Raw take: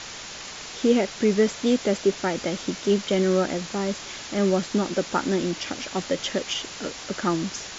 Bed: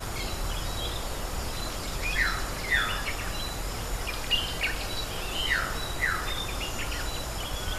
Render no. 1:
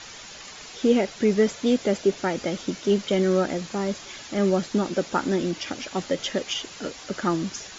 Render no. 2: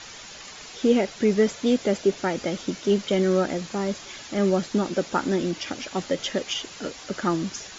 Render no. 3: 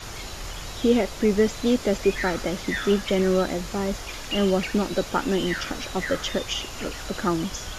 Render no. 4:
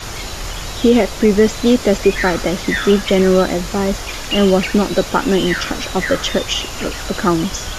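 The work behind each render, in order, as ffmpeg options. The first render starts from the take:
-af "afftdn=nr=7:nf=-38"
-af anull
-filter_complex "[1:a]volume=-4.5dB[a];[0:a][a]amix=inputs=2:normalize=0"
-af "volume=9dB,alimiter=limit=-2dB:level=0:latency=1"

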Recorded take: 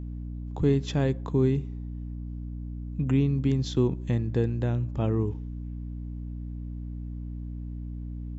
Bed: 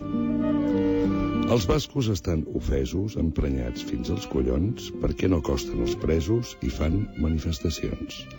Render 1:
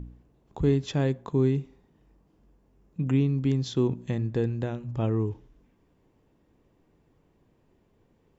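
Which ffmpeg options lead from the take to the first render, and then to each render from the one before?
-af "bandreject=f=60:t=h:w=4,bandreject=f=120:t=h:w=4,bandreject=f=180:t=h:w=4,bandreject=f=240:t=h:w=4,bandreject=f=300:t=h:w=4"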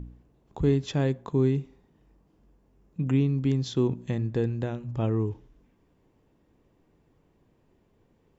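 -af anull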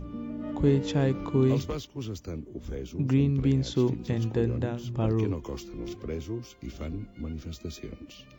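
-filter_complex "[1:a]volume=-11dB[a];[0:a][a]amix=inputs=2:normalize=0"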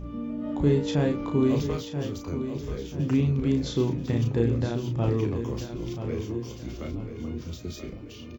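-filter_complex "[0:a]asplit=2[a][b];[b]adelay=34,volume=-5dB[c];[a][c]amix=inputs=2:normalize=0,aecho=1:1:983|1966|2949|3932:0.335|0.134|0.0536|0.0214"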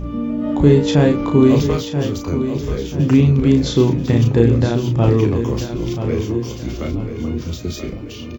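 -af "volume=11dB,alimiter=limit=-1dB:level=0:latency=1"

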